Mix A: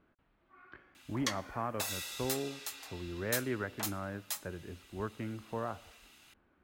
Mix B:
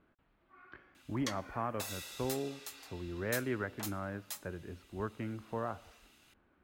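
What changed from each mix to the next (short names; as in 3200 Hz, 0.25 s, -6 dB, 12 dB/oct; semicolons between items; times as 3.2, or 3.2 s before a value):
background -5.0 dB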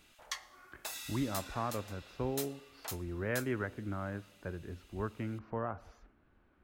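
background: entry -0.95 s; master: add low shelf 61 Hz +10.5 dB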